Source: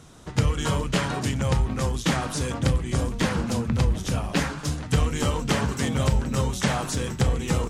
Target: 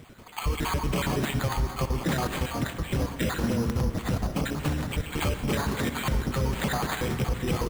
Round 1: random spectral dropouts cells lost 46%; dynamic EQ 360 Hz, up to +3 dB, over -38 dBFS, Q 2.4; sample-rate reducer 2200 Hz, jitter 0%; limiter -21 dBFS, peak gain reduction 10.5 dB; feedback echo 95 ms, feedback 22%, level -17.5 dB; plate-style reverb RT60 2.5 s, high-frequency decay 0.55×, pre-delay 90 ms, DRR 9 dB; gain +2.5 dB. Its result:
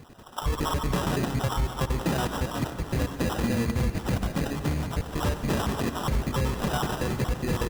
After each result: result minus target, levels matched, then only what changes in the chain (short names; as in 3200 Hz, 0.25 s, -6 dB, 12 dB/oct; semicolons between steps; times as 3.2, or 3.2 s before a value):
echo 32 ms late; sample-rate reducer: distortion +4 dB
change: feedback echo 63 ms, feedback 22%, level -17.5 dB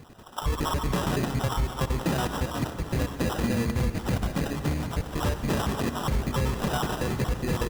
sample-rate reducer: distortion +4 dB
change: sample-rate reducer 5500 Hz, jitter 0%